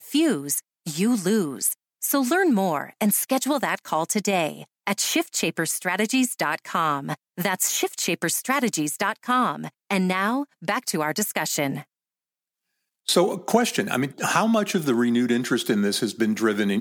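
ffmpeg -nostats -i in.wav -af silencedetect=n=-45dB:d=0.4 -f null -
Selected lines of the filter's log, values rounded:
silence_start: 11.83
silence_end: 13.07 | silence_duration: 1.24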